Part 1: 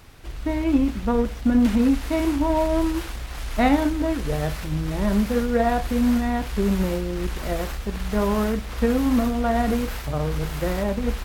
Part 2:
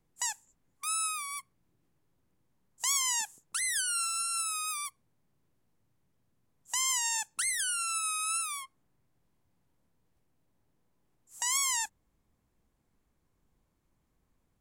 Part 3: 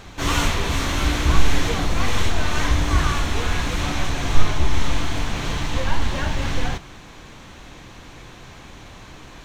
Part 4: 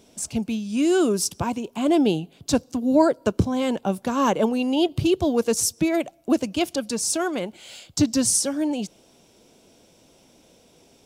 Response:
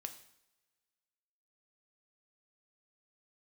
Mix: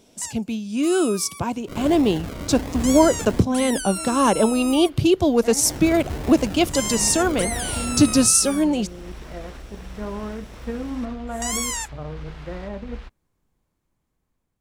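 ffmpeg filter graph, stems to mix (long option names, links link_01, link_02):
-filter_complex "[0:a]lowpass=4100,adelay=1850,volume=-14dB[link_01];[1:a]volume=-3dB[link_02];[2:a]highpass=52,acrusher=samples=40:mix=1:aa=0.000001:lfo=1:lforange=24:lforate=1.4,adelay=1500,volume=-10.5dB,asplit=3[link_03][link_04][link_05];[link_03]atrim=end=3.42,asetpts=PTS-STARTPTS,afade=type=out:start_time=3.416:duration=0.004:curve=hsin[link_06];[link_04]atrim=start=3.42:end=5.65,asetpts=PTS-STARTPTS,volume=0[link_07];[link_05]atrim=start=5.65,asetpts=PTS-STARTPTS,afade=type=in:duration=0.004:curve=hsin[link_08];[link_06][link_07][link_08]concat=n=3:v=0:a=1[link_09];[3:a]volume=-0.5dB,asplit=2[link_10][link_11];[link_11]apad=whole_len=577457[link_12];[link_01][link_12]sidechaincompress=threshold=-24dB:ratio=8:attack=46:release=1110[link_13];[link_13][link_02][link_09][link_10]amix=inputs=4:normalize=0,dynaudnorm=framelen=900:gausssize=5:maxgain=6dB"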